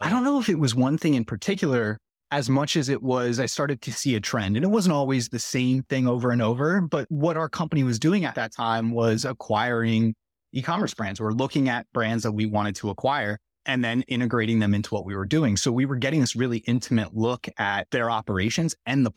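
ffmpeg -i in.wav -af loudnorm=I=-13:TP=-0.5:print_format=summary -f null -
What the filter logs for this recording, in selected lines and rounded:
Input Integrated:    -24.6 LUFS
Input True Peak:     -11.7 dBTP
Input LRA:             1.5 LU
Input Threshold:     -34.6 LUFS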